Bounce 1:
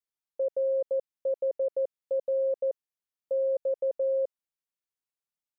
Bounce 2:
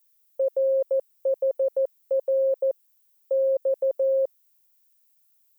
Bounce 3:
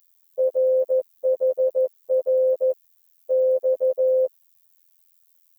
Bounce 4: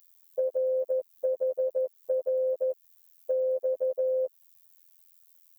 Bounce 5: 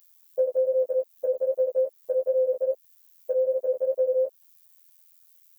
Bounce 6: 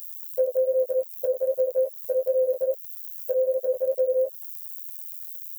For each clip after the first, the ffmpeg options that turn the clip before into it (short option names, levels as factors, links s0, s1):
-af "aemphasis=mode=production:type=riaa,volume=2.24"
-af "afftfilt=real='hypot(re,im)*cos(PI*b)':imag='0':win_size=2048:overlap=0.75,volume=2.24"
-af "acompressor=threshold=0.0447:ratio=6,volume=1.12"
-af "flanger=delay=15.5:depth=3.7:speed=2.5,volume=2"
-af "crystalizer=i=5:c=0"